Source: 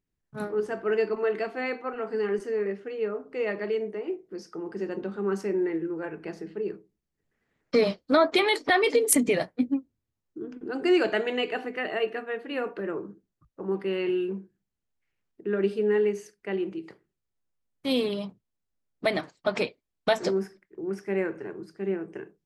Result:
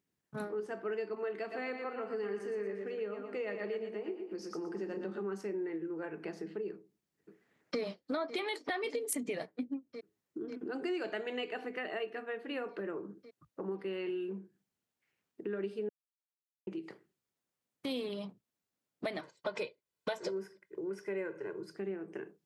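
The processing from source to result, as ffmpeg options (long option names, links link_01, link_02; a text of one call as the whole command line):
ffmpeg -i in.wav -filter_complex "[0:a]asplit=3[link_01][link_02][link_03];[link_01]afade=type=out:start_time=1.5:duration=0.02[link_04];[link_02]aecho=1:1:117|234|351|468|585:0.473|0.189|0.0757|0.0303|0.0121,afade=type=in:start_time=1.5:duration=0.02,afade=type=out:start_time=5.22:duration=0.02[link_05];[link_03]afade=type=in:start_time=5.22:duration=0.02[link_06];[link_04][link_05][link_06]amix=inputs=3:normalize=0,asplit=2[link_07][link_08];[link_08]afade=type=in:start_time=6.72:duration=0.01,afade=type=out:start_time=7.8:duration=0.01,aecho=0:1:550|1100|1650|2200|2750|3300|3850|4400|4950|5500|6050:0.199526|0.149645|0.112234|0.0841751|0.0631313|0.0473485|0.0355114|0.0266335|0.0199752|0.0149814|0.011236[link_09];[link_07][link_09]amix=inputs=2:normalize=0,asettb=1/sr,asplit=3[link_10][link_11][link_12];[link_10]atrim=end=19.214[link_13];[link_11]atrim=start=19.21:end=21.76,asetpts=PTS-STARTPTS,afade=type=in:duration=0.004:curve=qsin,afade=type=out:start_time=2.546:duration=0.004:curve=qsin,aecho=1:1:2:0.58,atrim=end_sample=112455[link_14];[link_12]atrim=start=21.756[link_15];[link_13][link_14]acrossfade=duration=0.004:curve1=hsin:curve2=qsin[link_16];[link_16][link_15]acrossfade=duration=0.004:curve1=qsin:curve2=hsin,asplit=3[link_17][link_18][link_19];[link_17]atrim=end=15.89,asetpts=PTS-STARTPTS,afade=type=out:start_time=15.886:duration=0.004:curve=hsin[link_20];[link_18]atrim=start=15.89:end=16.67,asetpts=PTS-STARTPTS,volume=0[link_21];[link_19]atrim=start=16.67,asetpts=PTS-STARTPTS,afade=type=in:duration=0.004:curve=hsin[link_22];[link_20][link_21][link_22]concat=n=3:v=0:a=1,highpass=150,acompressor=threshold=-42dB:ratio=3,volume=2.5dB" out.wav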